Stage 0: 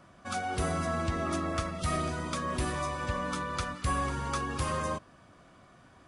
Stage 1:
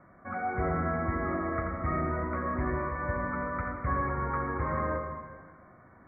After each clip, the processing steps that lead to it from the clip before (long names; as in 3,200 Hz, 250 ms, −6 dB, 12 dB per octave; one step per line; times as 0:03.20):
Chebyshev low-pass filter 2,200 Hz, order 8
on a send at −3 dB: convolution reverb RT60 1.6 s, pre-delay 56 ms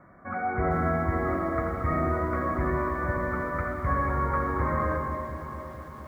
on a send: delay that swaps between a low-pass and a high-pass 229 ms, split 1,200 Hz, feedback 65%, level −9.5 dB
on the sum: feedback echo at a low word length 458 ms, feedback 55%, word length 9 bits, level −12 dB
level +3 dB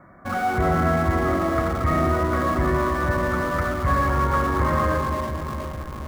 notch filter 450 Hz, Q 12
in parallel at −12 dB: comparator with hysteresis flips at −36.5 dBFS
on the sum: level +4.5 dB